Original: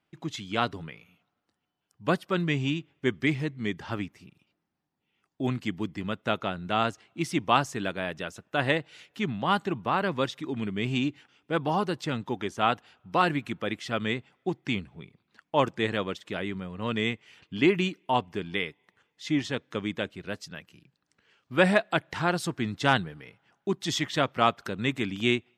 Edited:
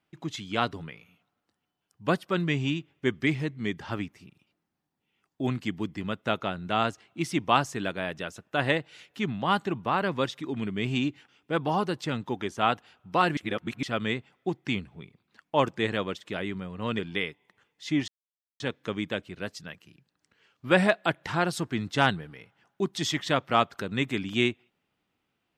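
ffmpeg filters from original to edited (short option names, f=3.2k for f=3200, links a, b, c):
-filter_complex "[0:a]asplit=5[a][b][c][d][e];[a]atrim=end=13.372[f];[b]atrim=start=13.368:end=13.832,asetpts=PTS-STARTPTS,areverse[g];[c]atrim=start=13.828:end=16.992[h];[d]atrim=start=18.378:end=19.47,asetpts=PTS-STARTPTS,afade=t=out:st=1.088:d=0.004:c=hsin,apad=pad_dur=0.52[i];[e]atrim=start=19.47,asetpts=PTS-STARTPTS,afade=t=in:d=0.004:c=hsin[j];[f][g]acrossfade=d=0.004:c1=hsin:c2=hsin[k];[k][h]acrossfade=d=0.004:c1=hsin:c2=hsin[l];[i][j]concat=n=2:v=0:a=1[m];[l][m]acrossfade=d=0.004:c1=hsin:c2=hsin"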